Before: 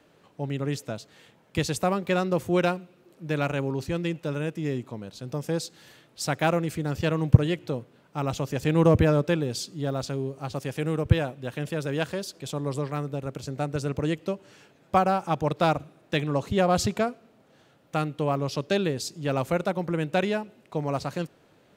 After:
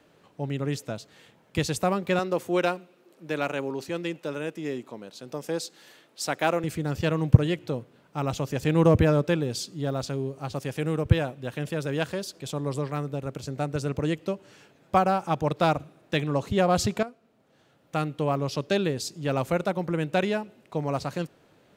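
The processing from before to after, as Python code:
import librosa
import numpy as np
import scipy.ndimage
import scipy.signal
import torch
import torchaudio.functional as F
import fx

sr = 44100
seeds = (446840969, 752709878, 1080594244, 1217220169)

y = fx.highpass(x, sr, hz=260.0, slope=12, at=(2.19, 6.64))
y = fx.edit(y, sr, fx.fade_in_from(start_s=17.03, length_s=1.06, floor_db=-12.5), tone=tone)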